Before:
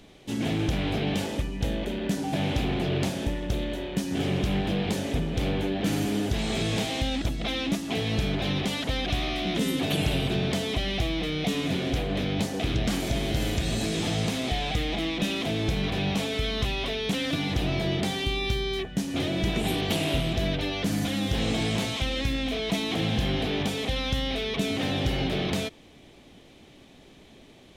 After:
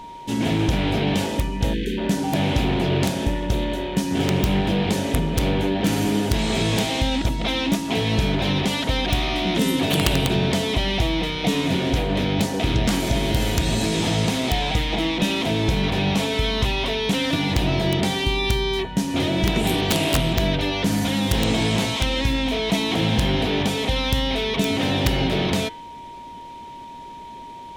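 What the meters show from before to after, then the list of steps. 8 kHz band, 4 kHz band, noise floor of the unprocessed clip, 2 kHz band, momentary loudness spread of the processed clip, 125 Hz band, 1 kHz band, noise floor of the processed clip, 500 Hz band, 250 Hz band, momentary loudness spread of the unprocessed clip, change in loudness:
+7.0 dB, +6.0 dB, −52 dBFS, +6.0 dB, 4 LU, +6.0 dB, +8.0 dB, −38 dBFS, +6.0 dB, +6.0 dB, 3 LU, +6.0 dB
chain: hum removal 152.7 Hz, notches 29
steady tone 940 Hz −42 dBFS
time-frequency box erased 0:01.74–0:01.98, 520–1,500 Hz
wrap-around overflow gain 16 dB
level +6 dB

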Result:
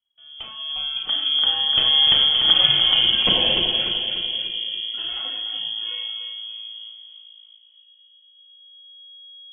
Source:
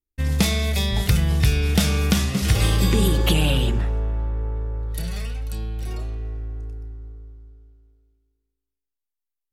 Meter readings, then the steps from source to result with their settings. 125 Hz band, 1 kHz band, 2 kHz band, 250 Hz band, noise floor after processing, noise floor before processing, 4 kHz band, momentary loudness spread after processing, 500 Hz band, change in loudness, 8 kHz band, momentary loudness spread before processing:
−22.0 dB, −0.5 dB, 0.0 dB, −14.0 dB, −54 dBFS, −84 dBFS, +14.5 dB, 18 LU, −6.5 dB, +4.5 dB, below −40 dB, 14 LU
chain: fade in at the beginning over 2.75 s
reverb reduction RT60 0.86 s
upward compression, threshold −44 dBFS
on a send: echo with a time of its own for lows and highs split 430 Hz, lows 616 ms, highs 295 ms, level −7 dB
on the sum: four-comb reverb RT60 0.85 s, combs from 28 ms, DRR 2 dB
noise reduction from a noise print of the clip's start 7 dB
voice inversion scrambler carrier 3,300 Hz

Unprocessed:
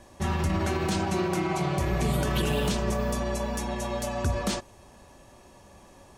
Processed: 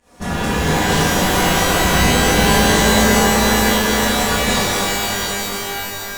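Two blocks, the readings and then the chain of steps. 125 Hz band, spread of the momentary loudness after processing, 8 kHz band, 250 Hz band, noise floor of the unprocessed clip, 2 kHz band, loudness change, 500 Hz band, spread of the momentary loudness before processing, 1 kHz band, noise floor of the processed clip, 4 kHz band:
+8.0 dB, 9 LU, +19.5 dB, +12.0 dB, −53 dBFS, +19.5 dB, +13.0 dB, +11.5 dB, 5 LU, +15.0 dB, −28 dBFS, +19.0 dB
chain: lower of the sound and its delayed copy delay 4.1 ms
fake sidechain pumping 113 BPM, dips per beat 1, −16 dB, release 170 ms
reverb with rising layers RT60 3.5 s, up +12 semitones, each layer −2 dB, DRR −9 dB
level +2.5 dB

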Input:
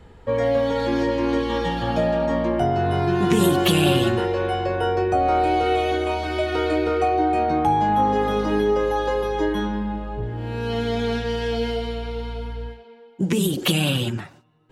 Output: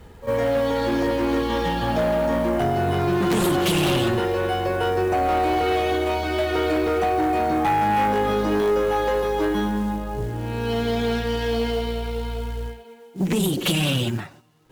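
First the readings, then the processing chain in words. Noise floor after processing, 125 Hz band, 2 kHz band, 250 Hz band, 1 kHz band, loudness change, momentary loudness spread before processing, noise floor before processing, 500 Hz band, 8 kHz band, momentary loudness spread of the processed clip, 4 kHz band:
−45 dBFS, −1.0 dB, +1.0 dB, −0.5 dB, −1.0 dB, −0.5 dB, 10 LU, −47 dBFS, −0.5 dB, +0.5 dB, 8 LU, −0.5 dB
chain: echo ahead of the sound 48 ms −16 dB
log-companded quantiser 6 bits
harmonic generator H 5 −7 dB, 6 −14 dB, 8 −14 dB, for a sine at −6 dBFS
level −8.5 dB

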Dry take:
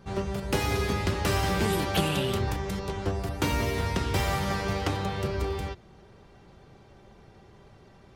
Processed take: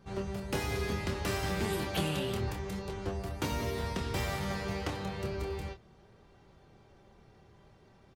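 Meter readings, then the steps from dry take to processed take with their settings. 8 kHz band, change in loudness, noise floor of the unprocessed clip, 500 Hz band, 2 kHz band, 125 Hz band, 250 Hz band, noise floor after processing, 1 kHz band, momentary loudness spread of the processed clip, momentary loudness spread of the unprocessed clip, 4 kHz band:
−6.0 dB, −6.5 dB, −54 dBFS, −5.5 dB, −6.5 dB, −7.0 dB, −6.0 dB, −61 dBFS, −8.0 dB, 6 LU, 6 LU, −6.5 dB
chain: double-tracking delay 26 ms −7.5 dB
level −7 dB

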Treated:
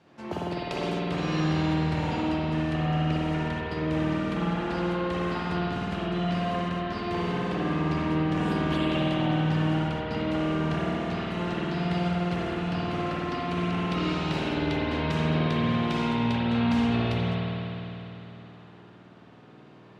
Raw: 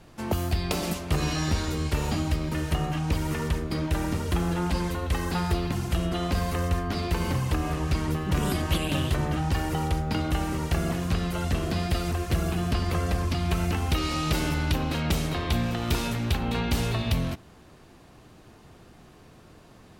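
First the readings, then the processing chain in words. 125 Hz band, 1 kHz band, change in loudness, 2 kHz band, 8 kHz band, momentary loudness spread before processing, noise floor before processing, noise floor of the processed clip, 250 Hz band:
−2.0 dB, +1.5 dB, 0.0 dB, +0.5 dB, below −10 dB, 2 LU, −52 dBFS, −50 dBFS, +3.0 dB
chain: band-pass filter 150–4,700 Hz
spring reverb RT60 3.5 s, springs 51 ms, chirp 45 ms, DRR −7 dB
level −6.5 dB

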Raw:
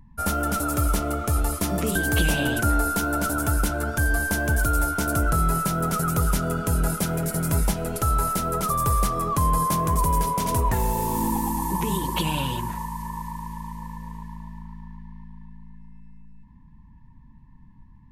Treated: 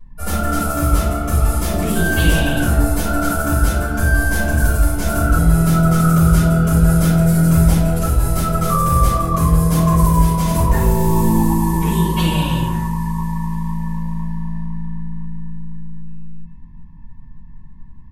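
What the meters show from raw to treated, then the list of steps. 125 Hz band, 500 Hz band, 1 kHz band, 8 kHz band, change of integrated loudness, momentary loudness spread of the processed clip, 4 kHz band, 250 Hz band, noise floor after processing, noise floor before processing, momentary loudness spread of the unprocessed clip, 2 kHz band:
+11.0 dB, +6.5 dB, +3.5 dB, +3.0 dB, +7.5 dB, 13 LU, +4.5 dB, +10.5 dB, −36 dBFS, −49 dBFS, 14 LU, +5.0 dB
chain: rectangular room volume 180 cubic metres, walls mixed, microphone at 5.6 metres
level −10 dB

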